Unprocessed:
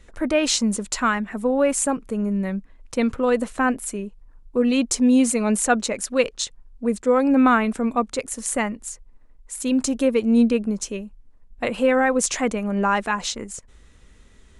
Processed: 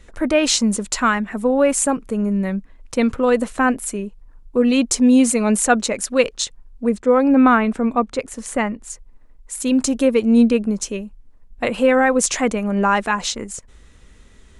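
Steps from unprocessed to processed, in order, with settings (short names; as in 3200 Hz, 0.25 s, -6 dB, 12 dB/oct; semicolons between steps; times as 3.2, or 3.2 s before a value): 6.89–8.9 LPF 2900 Hz 6 dB/oct; gain +3.5 dB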